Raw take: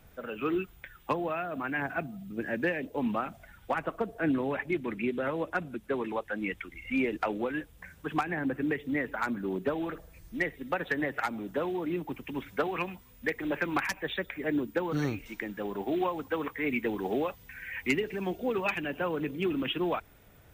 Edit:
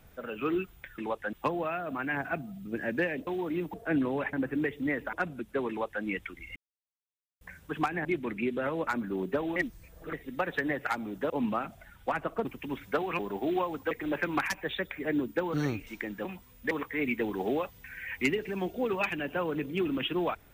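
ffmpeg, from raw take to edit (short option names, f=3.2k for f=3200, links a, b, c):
-filter_complex "[0:a]asplit=19[a][b][c][d][e][f][g][h][i][j][k][l][m][n][o][p][q][r][s];[a]atrim=end=0.982[t];[b]atrim=start=6.038:end=6.392[u];[c]atrim=start=0.978:end=2.922[v];[d]atrim=start=11.628:end=12.102[w];[e]atrim=start=4.068:end=4.662[x];[f]atrim=start=8.398:end=9.202[y];[g]atrim=start=5.478:end=6.91,asetpts=PTS-STARTPTS,afade=t=out:st=1.428:d=0.004:c=hsin[z];[h]atrim=start=6.91:end=7.76,asetpts=PTS-STARTPTS,volume=0[aa];[i]atrim=start=7.76:end=8.402,asetpts=PTS-STARTPTS,afade=t=in:d=0.004:c=hsin[ab];[j]atrim=start=4.658:end=5.482[ac];[k]atrim=start=9.198:end=9.892[ad];[l]atrim=start=9.888:end=10.462,asetpts=PTS-STARTPTS,areverse[ae];[m]atrim=start=10.458:end=11.632[af];[n]atrim=start=2.918:end=4.072[ag];[o]atrim=start=12.098:end=12.842[ah];[p]atrim=start=15.638:end=16.362[ai];[q]atrim=start=13.298:end=15.642[aj];[r]atrim=start=12.838:end=13.302[ak];[s]atrim=start=16.358[al];[t][u]acrossfade=d=0.004:c1=hsin:c2=hsin[am];[am][v]acrossfade=d=0.004:c1=hsin:c2=hsin[an];[an][w]acrossfade=d=0.004:c1=hsin:c2=hsin[ao];[ao][x]acrossfade=d=0.004:c1=hsin:c2=hsin[ap];[ap][y]acrossfade=d=0.004:c1=hsin:c2=hsin[aq];[z][aa][ab]concat=n=3:v=0:a=1[ar];[aq][ar]acrossfade=d=0.004:c1=hsin:c2=hsin[as];[as][ac]acrossfade=d=0.004:c1=hsin:c2=hsin[at];[at][ad]acrossfade=d=0.004:c1=hsin:c2=hsin[au];[au][ae]acrossfade=d=0.004:c1=hsin:c2=hsin[av];[av][af]acrossfade=d=0.004:c1=hsin:c2=hsin[aw];[aw][ag]acrossfade=d=0.004:c1=hsin:c2=hsin[ax];[ax][ah]acrossfade=d=0.004:c1=hsin:c2=hsin[ay];[ay][ai]acrossfade=d=0.004:c1=hsin:c2=hsin[az];[az][aj]acrossfade=d=0.004:c1=hsin:c2=hsin[ba];[ba][ak]acrossfade=d=0.004:c1=hsin:c2=hsin[bb];[bb][al]acrossfade=d=0.004:c1=hsin:c2=hsin"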